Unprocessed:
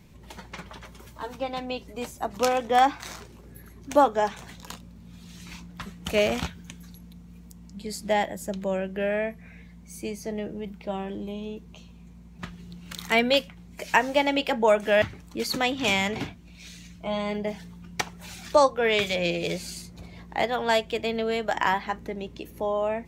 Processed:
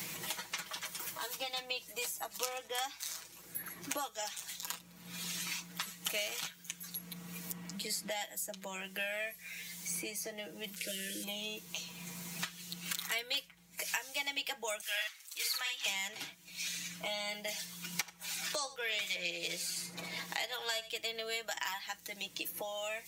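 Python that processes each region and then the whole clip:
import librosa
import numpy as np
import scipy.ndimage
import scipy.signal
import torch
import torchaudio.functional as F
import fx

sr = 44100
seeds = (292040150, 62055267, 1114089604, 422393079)

y = fx.chain(x, sr, fx.delta_mod(bps=64000, step_db=-46.0),
    fx.brickwall_bandstop(low_hz=610.0, high_hz=1400.0), at=(10.76, 11.24))
y = fx.chain(y, sr, fx.highpass(hz=1200.0, slope=12),
    fx.doubler(ms=50.0, db=-3.0), at=(14.81, 15.86))
y = fx.chain(y, sr, fx.high_shelf(hz=7600.0, db=-4.5),
    fx.echo_single(ms=84, db=-17.0),
    fx.band_squash(depth_pct=40), at=(17.48, 20.96))
y = scipy.signal.lfilter([1.0, -0.97], [1.0], y)
y = y + 0.8 * np.pad(y, (int(6.2 * sr / 1000.0), 0))[:len(y)]
y = fx.band_squash(y, sr, depth_pct=100)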